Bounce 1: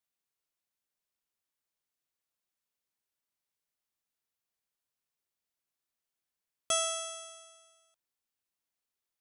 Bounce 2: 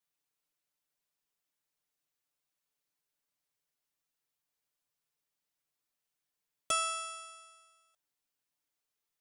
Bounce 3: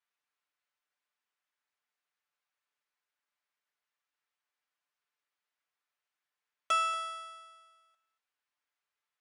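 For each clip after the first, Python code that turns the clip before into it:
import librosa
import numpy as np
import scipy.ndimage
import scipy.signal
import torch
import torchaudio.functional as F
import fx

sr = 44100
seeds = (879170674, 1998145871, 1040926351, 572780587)

y1 = x + 0.84 * np.pad(x, (int(6.8 * sr / 1000.0), 0))[:len(x)]
y1 = F.gain(torch.from_numpy(y1), -1.0).numpy()
y2 = fx.bandpass_q(y1, sr, hz=1500.0, q=0.95)
y2 = y2 + 10.0 ** (-16.5 / 20.0) * np.pad(y2, (int(231 * sr / 1000.0), 0))[:len(y2)]
y2 = F.gain(torch.from_numpy(y2), 5.5).numpy()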